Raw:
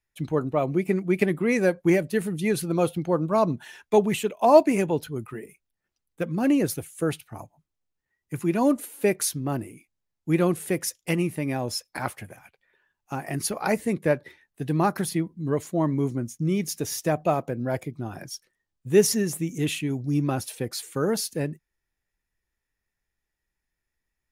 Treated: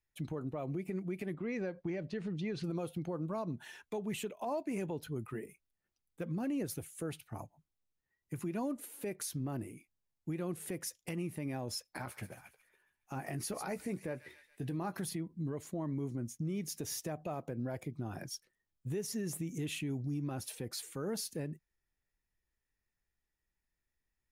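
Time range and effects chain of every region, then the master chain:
0:01.34–0:02.64: low-pass filter 5,300 Hz 24 dB per octave + downward compressor 2.5 to 1, threshold −32 dBFS
0:11.90–0:14.99: double-tracking delay 16 ms −11 dB + delay with a high-pass on its return 139 ms, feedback 46%, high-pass 2,700 Hz, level −11 dB
whole clip: low-shelf EQ 410 Hz +3 dB; downward compressor 6 to 1, threshold −25 dBFS; brickwall limiter −23 dBFS; level −6.5 dB

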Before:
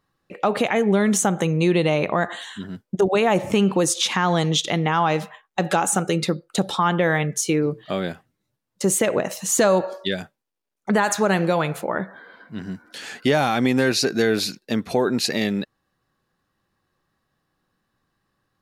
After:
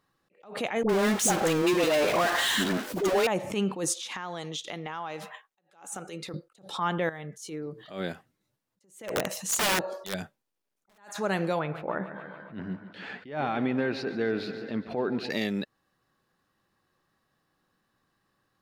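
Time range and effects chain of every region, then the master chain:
0:00.83–0:03.27: high-pass filter 220 Hz 24 dB per octave + power curve on the samples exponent 0.35 + all-pass dispersion highs, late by 62 ms, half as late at 700 Hz
0:03.94–0:06.34: low-shelf EQ 200 Hz −9.5 dB + downward compressor 4 to 1, threshold −34 dBFS
0:07.09–0:07.91: parametric band 2,500 Hz −7.5 dB 0.29 octaves + downward compressor 3 to 1, threshold −36 dBFS
0:09.08–0:10.98: low-shelf EQ 170 Hz +7 dB + wrap-around overflow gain 12.5 dB
0:11.59–0:15.30: high-frequency loss of the air 380 metres + feedback echo with a swinging delay time 142 ms, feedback 67%, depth 62 cents, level −15 dB
whole clip: low-shelf EQ 120 Hz −7 dB; downward compressor 2 to 1, threshold −29 dBFS; level that may rise only so fast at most 140 dB per second

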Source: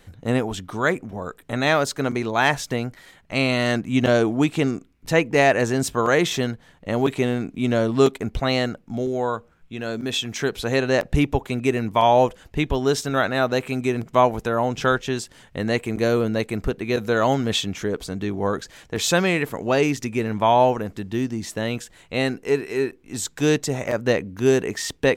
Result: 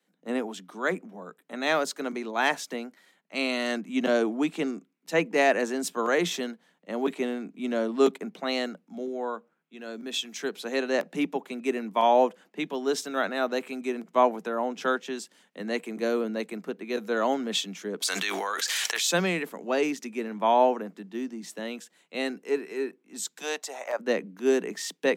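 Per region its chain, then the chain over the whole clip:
0:18.02–0:19.06: high-pass filter 1,400 Hz + envelope flattener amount 100%
0:23.41–0:23.99: high-pass with resonance 740 Hz, resonance Q 2.1 + de-essing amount 45%
whole clip: Butterworth high-pass 170 Hz 96 dB per octave; multiband upward and downward expander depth 40%; level −6.5 dB

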